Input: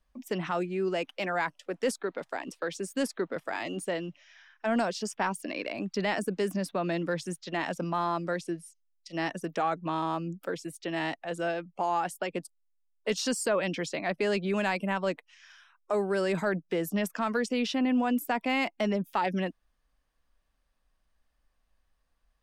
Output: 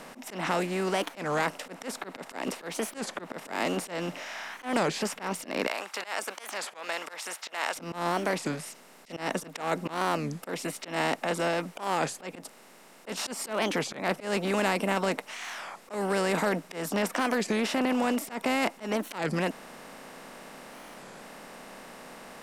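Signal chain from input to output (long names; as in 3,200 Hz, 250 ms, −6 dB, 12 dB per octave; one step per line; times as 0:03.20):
compressor on every frequency bin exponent 0.4
0:05.67–0:07.76: high-pass filter 820 Hz 12 dB per octave
volume swells 151 ms
wow of a warped record 33 1/3 rpm, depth 250 cents
level −4 dB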